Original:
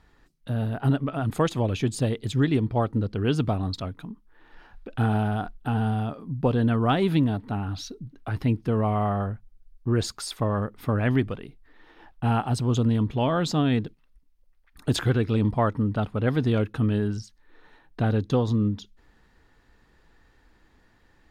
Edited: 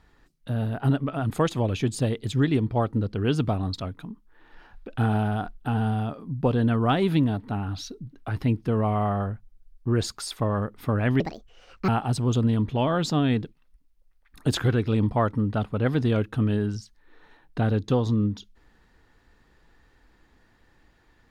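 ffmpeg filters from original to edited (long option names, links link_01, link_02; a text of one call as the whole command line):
ffmpeg -i in.wav -filter_complex "[0:a]asplit=3[link_01][link_02][link_03];[link_01]atrim=end=11.204[link_04];[link_02]atrim=start=11.2:end=12.3,asetpts=PTS-STARTPTS,asetrate=71001,aresample=44100,atrim=end_sample=30130,asetpts=PTS-STARTPTS[link_05];[link_03]atrim=start=12.296[link_06];[link_04][link_05]acrossfade=duration=0.004:curve1=hsin:curve2=hsin[link_07];[link_07][link_06]acrossfade=duration=0.004:curve1=hsin:curve2=hsin" out.wav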